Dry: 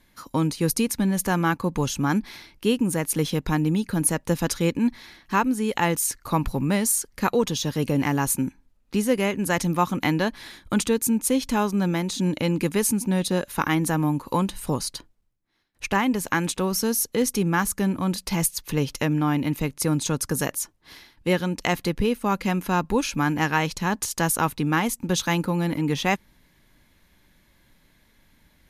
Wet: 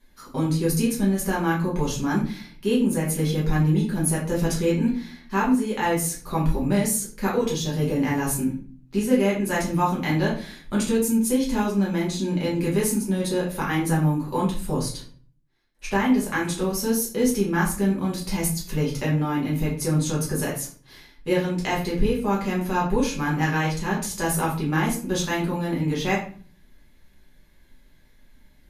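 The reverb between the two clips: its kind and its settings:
rectangular room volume 37 cubic metres, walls mixed, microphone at 1.2 metres
level −8.5 dB

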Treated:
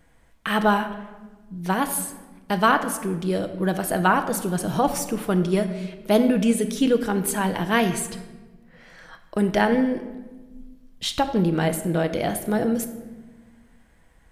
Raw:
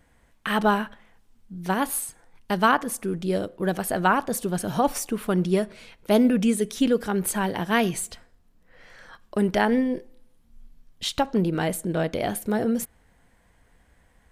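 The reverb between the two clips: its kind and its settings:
rectangular room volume 900 cubic metres, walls mixed, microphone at 0.64 metres
level +1 dB

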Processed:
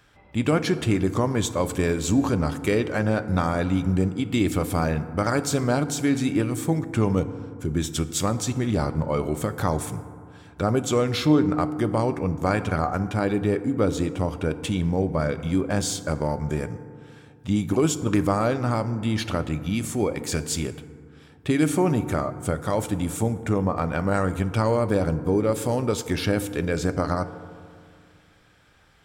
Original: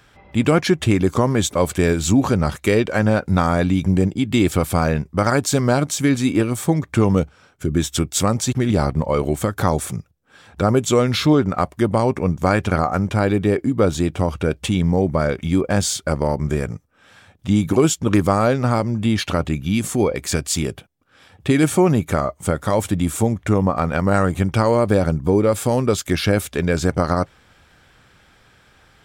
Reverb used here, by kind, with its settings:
feedback delay network reverb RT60 2.2 s, low-frequency decay 1.2×, high-frequency decay 0.35×, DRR 11 dB
level −6 dB

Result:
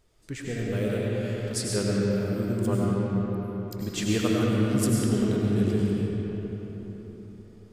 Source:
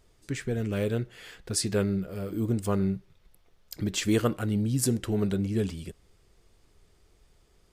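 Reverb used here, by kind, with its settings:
comb and all-pass reverb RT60 4.5 s, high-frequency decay 0.55×, pre-delay 60 ms, DRR −5 dB
level −3.5 dB

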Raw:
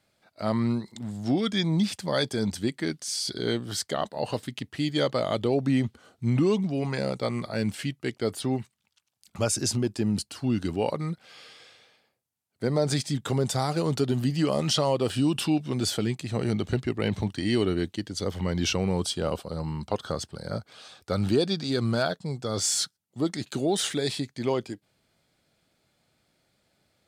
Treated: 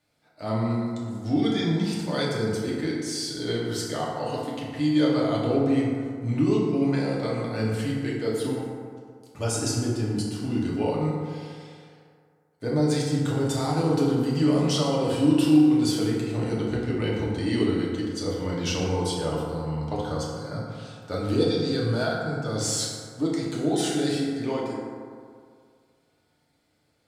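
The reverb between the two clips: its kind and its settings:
feedback delay network reverb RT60 2.1 s, low-frequency decay 0.9×, high-frequency decay 0.4×, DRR −5.5 dB
level −6 dB

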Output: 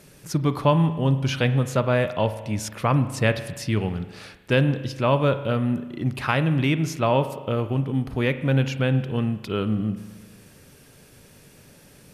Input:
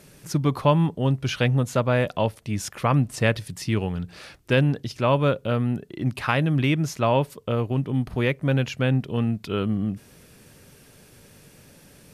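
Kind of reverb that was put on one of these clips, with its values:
spring reverb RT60 1.3 s, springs 37 ms, chirp 20 ms, DRR 11 dB

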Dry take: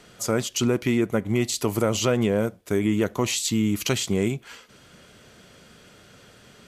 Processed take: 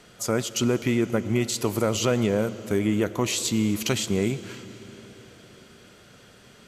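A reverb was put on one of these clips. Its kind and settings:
comb and all-pass reverb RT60 4.7 s, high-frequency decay 0.9×, pre-delay 55 ms, DRR 13.5 dB
level −1 dB

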